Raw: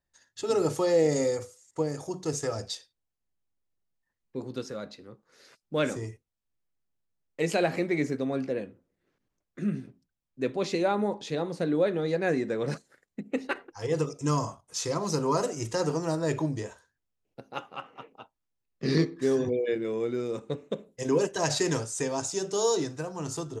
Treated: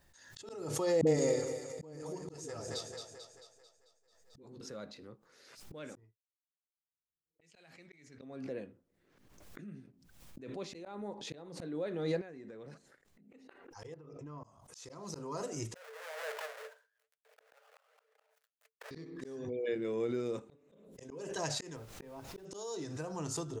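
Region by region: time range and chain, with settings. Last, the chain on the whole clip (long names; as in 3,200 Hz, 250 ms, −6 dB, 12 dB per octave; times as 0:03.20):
0:01.01–0:04.61: double-tracking delay 13 ms −11 dB + all-pass dispersion highs, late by 57 ms, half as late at 300 Hz + echo with a time of its own for lows and highs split 490 Hz, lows 133 ms, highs 221 ms, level −8 dB
0:05.95–0:08.22: low-pass that shuts in the quiet parts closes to 350 Hz, open at −22 dBFS + downward expander −33 dBFS + guitar amp tone stack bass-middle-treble 5-5-5
0:12.21–0:13.29: high-shelf EQ 4,900 Hz −5 dB + downward compressor 10 to 1, threshold −41 dBFS
0:13.94–0:14.44: downward compressor 20 to 1, threshold −35 dBFS + low-pass filter 2,000 Hz
0:15.75–0:18.91: each half-wave held at its own peak + flanger 2 Hz, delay 1.8 ms, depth 8 ms, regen −66% + Chebyshev high-pass with heavy ripple 430 Hz, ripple 9 dB
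0:21.75–0:22.44: high-frequency loss of the air 350 metres + background noise pink −49 dBFS
whole clip: volume swells 607 ms; background raised ahead of every attack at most 45 dB per second; level −5 dB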